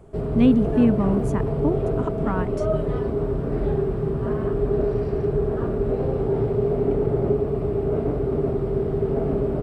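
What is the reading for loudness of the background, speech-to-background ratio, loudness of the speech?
−24.0 LKFS, 1.0 dB, −23.0 LKFS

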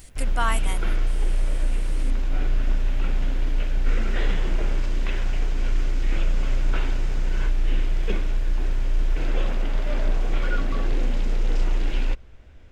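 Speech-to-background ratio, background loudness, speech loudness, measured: −2.0 dB, −28.0 LKFS, −30.0 LKFS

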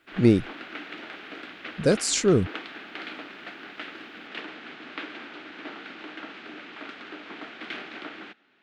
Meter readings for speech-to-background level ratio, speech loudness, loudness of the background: 16.5 dB, −22.5 LKFS, −39.0 LKFS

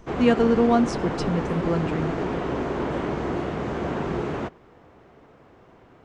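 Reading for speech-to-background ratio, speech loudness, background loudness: 4.5 dB, −23.5 LKFS, −28.0 LKFS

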